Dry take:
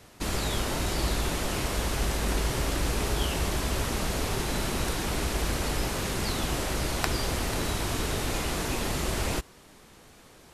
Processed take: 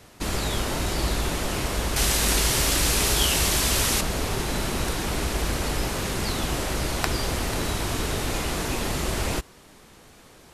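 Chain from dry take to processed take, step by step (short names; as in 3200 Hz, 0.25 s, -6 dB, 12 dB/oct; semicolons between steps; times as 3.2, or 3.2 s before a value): 1.96–4.01 high shelf 2200 Hz +11.5 dB; gain +2.5 dB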